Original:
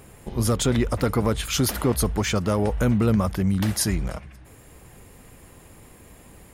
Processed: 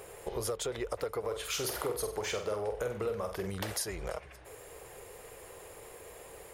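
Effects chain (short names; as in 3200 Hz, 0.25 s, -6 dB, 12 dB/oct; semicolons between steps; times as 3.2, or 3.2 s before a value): resonant low shelf 330 Hz -10 dB, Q 3; compressor 6:1, threshold -33 dBFS, peak gain reduction 16.5 dB; 1.19–3.5 flutter echo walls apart 8.1 m, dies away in 0.43 s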